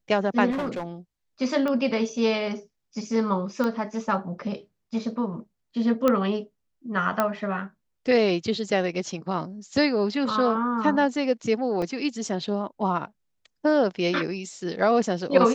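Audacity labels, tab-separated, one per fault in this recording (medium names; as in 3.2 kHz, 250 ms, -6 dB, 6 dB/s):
0.500000	0.840000	clipped -25 dBFS
1.680000	1.680000	pop -17 dBFS
3.640000	3.640000	pop -15 dBFS
6.080000	6.080000	pop -9 dBFS
7.200000	7.200000	pop -9 dBFS
11.820000	11.820000	dropout 3.5 ms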